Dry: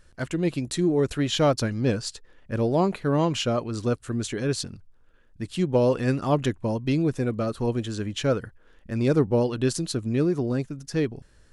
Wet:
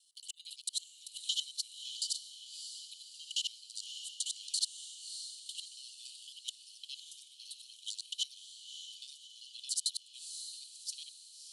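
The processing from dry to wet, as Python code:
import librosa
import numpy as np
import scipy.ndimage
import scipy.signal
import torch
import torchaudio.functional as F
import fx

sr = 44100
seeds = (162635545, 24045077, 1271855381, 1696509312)

p1 = fx.local_reverse(x, sr, ms=56.0)
p2 = fx.rider(p1, sr, range_db=3, speed_s=0.5)
p3 = scipy.signal.sosfilt(scipy.signal.cheby1(6, 6, 2900.0, 'highpass', fs=sr, output='sos'), p2)
p4 = p3 + fx.echo_diffused(p3, sr, ms=599, feedback_pct=49, wet_db=-8.5, dry=0)
y = p4 * librosa.db_to_amplitude(1.0)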